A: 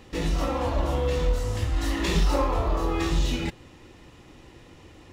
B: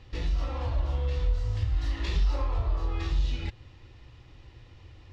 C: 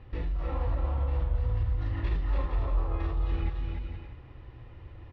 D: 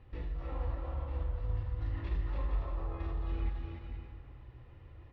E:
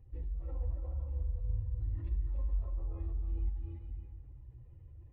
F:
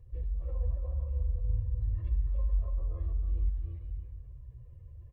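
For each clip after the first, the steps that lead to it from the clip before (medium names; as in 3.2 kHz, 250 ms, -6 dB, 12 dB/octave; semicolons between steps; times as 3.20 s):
FFT filter 120 Hz 0 dB, 170 Hz -15 dB, 4.7 kHz -7 dB, 9.7 kHz -25 dB; in parallel at +3 dB: compression, threshold -32 dBFS, peak gain reduction 13 dB; on the sum: trim -4.5 dB
low-pass 1.8 kHz 12 dB/octave; peak limiter -27 dBFS, peak gain reduction 9.5 dB; on a send: bouncing-ball echo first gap 290 ms, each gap 0.6×, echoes 5; on the sum: trim +2 dB
reverberation RT60 2.1 s, pre-delay 53 ms, DRR 6.5 dB; trim -7.5 dB
spectral contrast enhancement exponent 1.5; peaking EQ 1.4 kHz -7.5 dB 1.4 oct
comb 1.8 ms, depth 75%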